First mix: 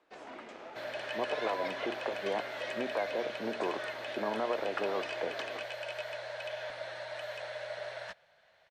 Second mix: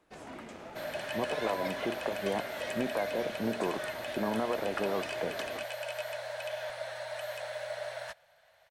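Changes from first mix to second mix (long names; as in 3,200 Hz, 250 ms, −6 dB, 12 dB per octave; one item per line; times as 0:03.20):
second sound: add low shelf with overshoot 410 Hz −12 dB, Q 1.5
master: remove three-way crossover with the lows and the highs turned down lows −16 dB, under 280 Hz, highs −17 dB, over 6,000 Hz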